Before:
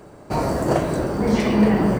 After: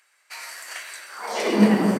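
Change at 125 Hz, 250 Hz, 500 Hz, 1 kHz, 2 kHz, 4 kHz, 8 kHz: -6.5, -2.5, -5.0, -5.0, +0.5, +1.5, +2.0 dB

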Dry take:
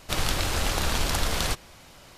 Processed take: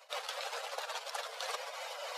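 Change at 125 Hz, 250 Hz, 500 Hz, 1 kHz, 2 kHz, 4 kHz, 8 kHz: under -40 dB, under -40 dB, -8.0 dB, -8.0 dB, -10.5 dB, -11.5 dB, -15.0 dB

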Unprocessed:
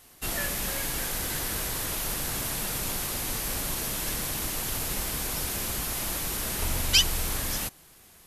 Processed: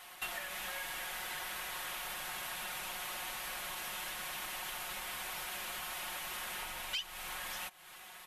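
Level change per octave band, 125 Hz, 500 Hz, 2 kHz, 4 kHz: -25.0, -12.0, -5.0, -11.0 dB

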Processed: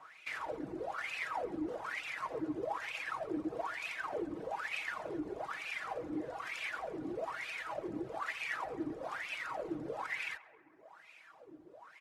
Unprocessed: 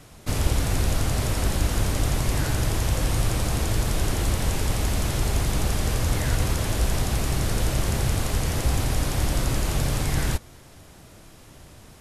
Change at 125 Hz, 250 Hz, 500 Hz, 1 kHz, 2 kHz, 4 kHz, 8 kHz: -33.5, -11.0, -8.5, -7.5, -5.5, -17.0, -28.0 dB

